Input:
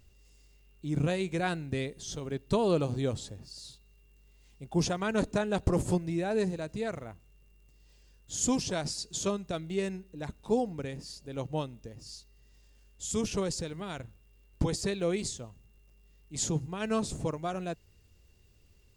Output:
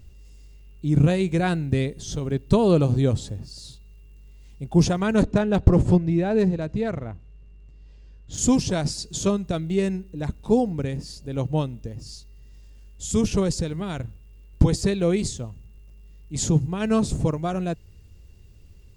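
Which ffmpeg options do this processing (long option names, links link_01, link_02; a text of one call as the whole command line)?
ffmpeg -i in.wav -filter_complex "[0:a]asettb=1/sr,asplit=3[link_01][link_02][link_03];[link_01]atrim=end=5.234[link_04];[link_02]atrim=start=5.23:end=8.38,asetpts=PTS-STARTPTS,afade=type=in:duration=0.004:curve=qsin,afade=type=out:start_time=3.146:duration=0.004:curve=qsin,adynamicsmooth=sensitivity=4:basefreq=4400[link_05];[link_03]atrim=start=8.376[link_06];[link_04][link_05]acrossfade=duration=0.004:curve1=hsin:curve2=qsin[link_07];[link_07][link_06]acrossfade=duration=0.004:curve1=qsin:curve2=hsin,lowshelf=frequency=280:gain=10,volume=4.5dB" out.wav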